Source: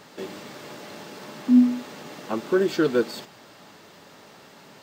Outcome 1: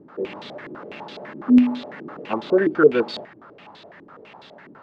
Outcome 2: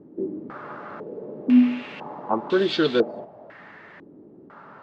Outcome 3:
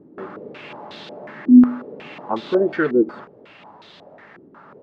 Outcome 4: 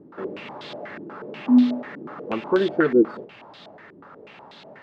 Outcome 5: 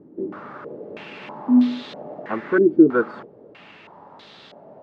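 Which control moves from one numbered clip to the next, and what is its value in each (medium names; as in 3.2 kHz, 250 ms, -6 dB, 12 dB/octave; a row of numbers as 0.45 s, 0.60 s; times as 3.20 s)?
step-sequenced low-pass, rate: 12 Hz, 2 Hz, 5.5 Hz, 8.2 Hz, 3.1 Hz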